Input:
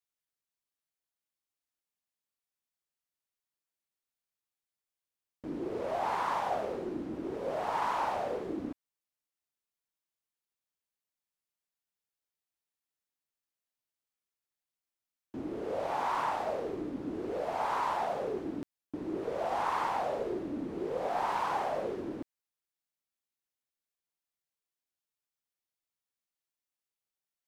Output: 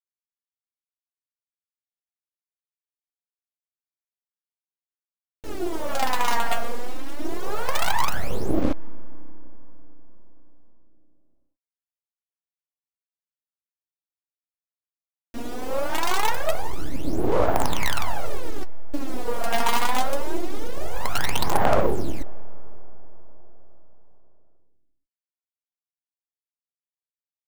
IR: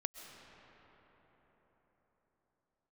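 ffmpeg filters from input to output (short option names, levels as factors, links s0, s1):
-filter_complex "[0:a]asettb=1/sr,asplit=3[s0][s1][s2];[s0]atrim=end=6.034[s3];[s1]atrim=start=6.03:end=7.2,asetpts=PTS-STARTPTS,afade=t=in:d=0.004:c=qsin,afade=t=out:st=1.166:d=0.004:c=qsin,highpass=440[s4];[s2]atrim=start=7.196[s5];[s3][s4]acrossfade=d=0.004:c1=hsin:c2=qsin[s6];[s6][s5]acrossfade=d=0.004:c1=qsin:c2=hsin,acrusher=bits=5:dc=4:mix=0:aa=0.000001,aphaser=in_gain=1:out_gain=1:delay=4.3:decay=0.78:speed=0.23:type=sinusoidal,asplit=2[s7][s8];[1:a]atrim=start_sample=2205[s9];[s8][s9]afir=irnorm=-1:irlink=0,volume=0.178[s10];[s7][s10]amix=inputs=2:normalize=0,volume=1.68"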